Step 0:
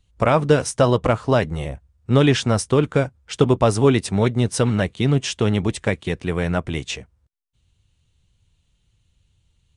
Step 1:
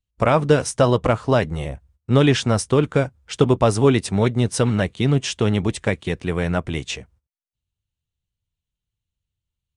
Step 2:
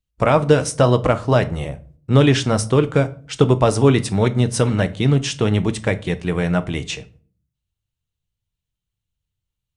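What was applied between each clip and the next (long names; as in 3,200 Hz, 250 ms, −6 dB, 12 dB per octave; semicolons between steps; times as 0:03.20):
noise gate −53 dBFS, range −20 dB
convolution reverb RT60 0.45 s, pre-delay 6 ms, DRR 11.5 dB; level +1 dB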